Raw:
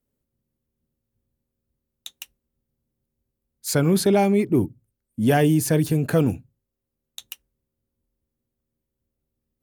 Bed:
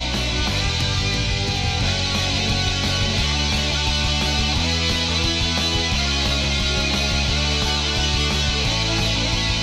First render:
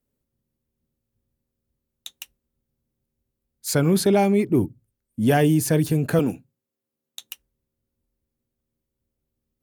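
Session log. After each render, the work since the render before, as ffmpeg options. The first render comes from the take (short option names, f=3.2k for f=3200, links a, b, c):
-filter_complex "[0:a]asettb=1/sr,asplit=3[a][b][c];[a]atrim=end=6.194[d];[b]atrim=start=6.19:end=7.3,asetpts=PTS-STARTPTS,afade=t=in:d=0.004:c=qsin,afade=t=out:st=1.106:d=0.004:c=qsin,highpass=190[e];[c]atrim=start=7.296[f];[d][e]acrossfade=d=0.004:c1=hsin:c2=qsin[g];[g][f]acrossfade=d=0.004:c1=qsin:c2=hsin"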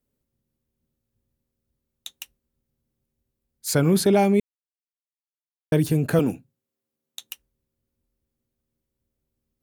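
-filter_complex "[0:a]asplit=3[a][b][c];[a]atrim=end=4.4,asetpts=PTS-STARTPTS,afade=t=out:st=4.396:d=0.004:c=hsin[d];[b]atrim=start=4.4:end=5.72,asetpts=PTS-STARTPTS,volume=0[e];[c]atrim=start=5.72,asetpts=PTS-STARTPTS,afade=t=in:d=0.004:c=hsin[f];[d][e][f]concat=n=3:v=0:a=1"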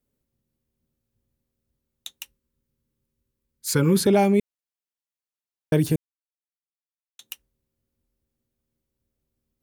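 -filter_complex "[0:a]asettb=1/sr,asplit=3[a][b][c];[a]atrim=end=2.184[d];[b]atrim=start=2.18:end=4.07,asetpts=PTS-STARTPTS,afade=t=in:d=0.004:c=qsin,afade=t=out:st=1.886:d=0.004:c=qsin,asuperstop=centerf=680:order=20:qfactor=2.5[e];[c]atrim=start=4.066[f];[d][e]acrossfade=d=0.004:c1=hsin:c2=qsin[g];[g][f]acrossfade=d=0.004:c1=qsin:c2=hsin,asplit=3[h][i][j];[h]atrim=end=5.96,asetpts=PTS-STARTPTS,afade=t=out:st=5.956:d=0.004:c=hsin[k];[i]atrim=start=5.96:end=7.19,asetpts=PTS-STARTPTS,volume=0[l];[j]atrim=start=7.19,asetpts=PTS-STARTPTS,afade=t=in:d=0.004:c=hsin[m];[k][l][m]concat=n=3:v=0:a=1"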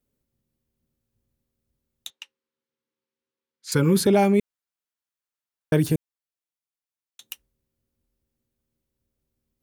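-filter_complex "[0:a]asettb=1/sr,asplit=3[a][b][c];[a]atrim=end=2.104[d];[b]atrim=start=2.1:end=3.72,asetpts=PTS-STARTPTS,afade=t=in:d=0.004:c=qsin,afade=t=out:st=1.616:d=0.004:c=qsin,highpass=480,lowpass=4.3k[e];[c]atrim=start=3.716[f];[d][e]acrossfade=d=0.004:c1=hsin:c2=qsin[g];[g][f]acrossfade=d=0.004:c1=qsin:c2=hsin,asettb=1/sr,asplit=3[h][i][j];[h]atrim=end=4.224[k];[i]atrim=start=4.22:end=5.88,asetpts=PTS-STARTPTS,afade=t=in:d=0.004:c=qsin,afade=t=out:st=1.656:d=0.004:c=qsin,equalizer=f=1.4k:t=o:w=0.77:g=4.5[l];[j]atrim=start=5.876[m];[k][l]acrossfade=d=0.004:c1=hsin:c2=qsin[n];[n][m]acrossfade=d=0.004:c1=qsin:c2=hsin"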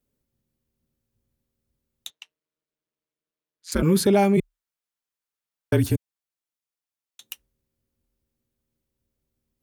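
-filter_complex "[0:a]asettb=1/sr,asplit=3[a][b][c];[a]atrim=end=2.114[d];[b]atrim=start=2.11:end=3.83,asetpts=PTS-STARTPTS,afade=t=in:d=0.004:c=qsin,afade=t=out:st=1.716:d=0.004:c=qsin,aeval=exprs='val(0)*sin(2*PI*87*n/s)':c=same[e];[c]atrim=start=3.826[f];[d][e]acrossfade=d=0.004:c1=hsin:c2=qsin[g];[g][f]acrossfade=d=0.004:c1=qsin:c2=hsin,asplit=3[h][i][j];[h]afade=t=out:st=4.36:d=0.02[k];[i]afreqshift=-36,afade=t=in:st=4.36:d=0.02,afade=t=out:st=5.95:d=0.02[l];[j]afade=t=in:st=5.95:d=0.02[m];[k][l][m]amix=inputs=3:normalize=0"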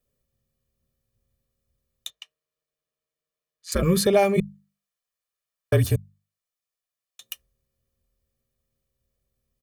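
-af "bandreject=f=50:t=h:w=6,bandreject=f=100:t=h:w=6,bandreject=f=150:t=h:w=6,bandreject=f=200:t=h:w=6,aecho=1:1:1.7:0.63"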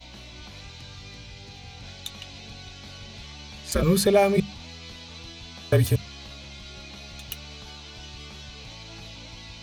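-filter_complex "[1:a]volume=-21.5dB[a];[0:a][a]amix=inputs=2:normalize=0"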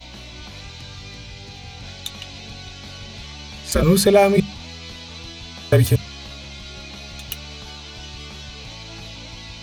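-af "volume=5.5dB,alimiter=limit=-3dB:level=0:latency=1"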